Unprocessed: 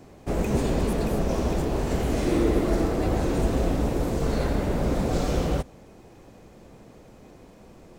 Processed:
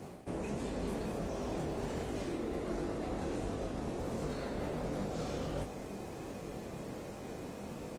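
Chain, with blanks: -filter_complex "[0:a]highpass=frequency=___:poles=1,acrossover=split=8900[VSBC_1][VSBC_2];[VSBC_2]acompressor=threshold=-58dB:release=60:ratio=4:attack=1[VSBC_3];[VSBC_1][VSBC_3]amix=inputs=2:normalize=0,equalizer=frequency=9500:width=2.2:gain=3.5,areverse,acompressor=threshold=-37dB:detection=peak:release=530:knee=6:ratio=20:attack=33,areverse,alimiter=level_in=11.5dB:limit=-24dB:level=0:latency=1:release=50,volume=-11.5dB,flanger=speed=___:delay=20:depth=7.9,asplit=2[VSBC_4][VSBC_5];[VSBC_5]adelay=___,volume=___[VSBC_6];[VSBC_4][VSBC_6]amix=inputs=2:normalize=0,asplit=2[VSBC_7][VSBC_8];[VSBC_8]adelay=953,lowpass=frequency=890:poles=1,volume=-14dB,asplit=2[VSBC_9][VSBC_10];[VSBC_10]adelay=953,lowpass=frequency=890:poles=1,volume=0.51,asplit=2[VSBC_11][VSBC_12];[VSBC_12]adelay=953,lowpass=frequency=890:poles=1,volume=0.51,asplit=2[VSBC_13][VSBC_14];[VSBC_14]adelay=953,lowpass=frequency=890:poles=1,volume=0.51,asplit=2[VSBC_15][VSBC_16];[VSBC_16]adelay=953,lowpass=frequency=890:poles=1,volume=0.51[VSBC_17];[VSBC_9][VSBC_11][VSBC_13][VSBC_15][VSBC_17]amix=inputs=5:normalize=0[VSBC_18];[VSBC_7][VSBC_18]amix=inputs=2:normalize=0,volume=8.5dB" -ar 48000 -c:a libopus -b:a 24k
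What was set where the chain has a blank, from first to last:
110, 1.4, 40, -10dB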